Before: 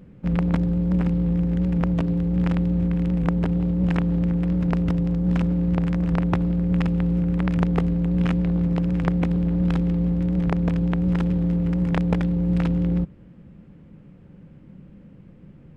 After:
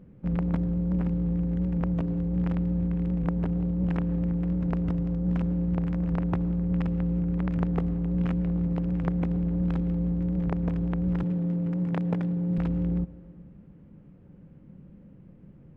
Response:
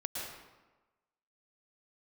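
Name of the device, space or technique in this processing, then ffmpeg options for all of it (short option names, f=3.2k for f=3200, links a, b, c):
compressed reverb return: -filter_complex "[0:a]asplit=2[a][b];[1:a]atrim=start_sample=2205[c];[b][c]afir=irnorm=-1:irlink=0,acompressor=threshold=-25dB:ratio=6,volume=-10.5dB[d];[a][d]amix=inputs=2:normalize=0,asettb=1/sr,asplit=3[e][f][g];[e]atrim=end=11.234[h];[f]atrim=start=11.23:end=12.58,asetpts=PTS-STARTPTS,afade=t=in:d=0.004:c=qsin,afade=t=out:st=1.346:d=0.004:c=qsin,highpass=f=110:w=0.5412,highpass=f=110:w=1.3066[i];[g]atrim=start=12.576[j];[h][i]acrossfade=d=0.004:c1=hsin:c2=qsin[k];[k][j]acrossfade=d=0.004:c1=qsin:c2=hsin,highshelf=f=2k:g=-10,volume=-6dB"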